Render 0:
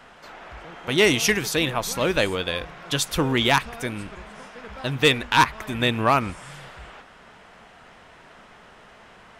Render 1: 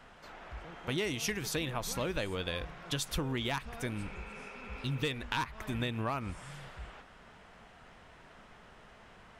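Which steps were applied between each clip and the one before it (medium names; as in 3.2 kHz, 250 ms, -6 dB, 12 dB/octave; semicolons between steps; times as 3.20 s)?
spectral replace 4.01–5.01 s, 380–2700 Hz before; bass shelf 140 Hz +8.5 dB; compression 10:1, threshold -22 dBFS, peak gain reduction 11 dB; trim -8 dB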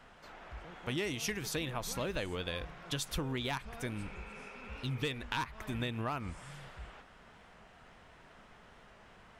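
warped record 45 rpm, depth 100 cents; trim -2 dB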